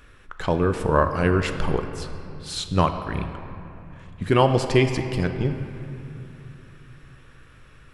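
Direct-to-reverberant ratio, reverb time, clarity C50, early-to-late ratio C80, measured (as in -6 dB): 6.5 dB, 3.0 s, 8.0 dB, 9.0 dB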